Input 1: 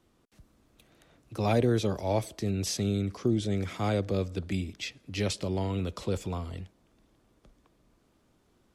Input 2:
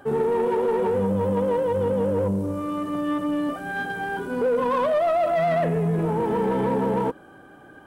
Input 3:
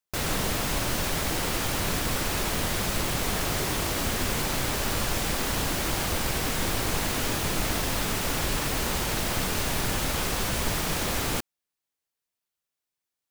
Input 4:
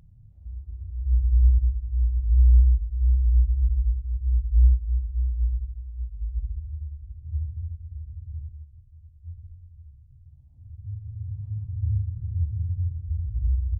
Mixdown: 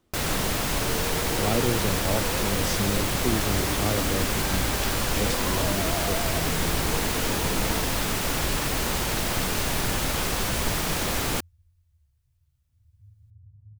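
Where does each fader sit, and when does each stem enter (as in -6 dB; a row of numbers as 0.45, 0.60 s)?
-1.0, -13.5, +1.5, -18.0 dB; 0.00, 0.75, 0.00, 2.15 s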